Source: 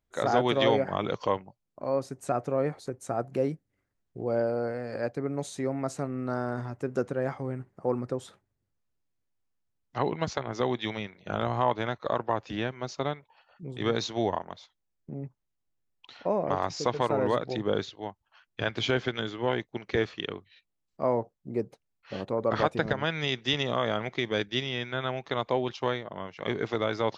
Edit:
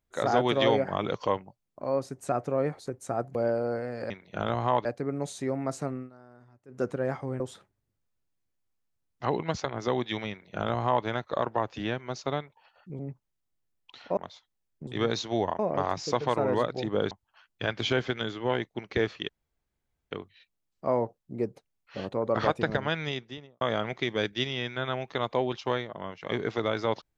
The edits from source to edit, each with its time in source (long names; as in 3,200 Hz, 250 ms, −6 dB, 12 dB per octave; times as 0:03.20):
0:03.35–0:04.27: remove
0:06.10–0:07.02: duck −22 dB, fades 0.17 s
0:07.57–0:08.13: remove
0:11.03–0:11.78: duplicate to 0:05.02
0:13.72–0:14.44: swap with 0:15.14–0:16.32
0:17.84–0:18.09: remove
0:20.27: splice in room tone 0.82 s
0:23.06–0:23.77: fade out and dull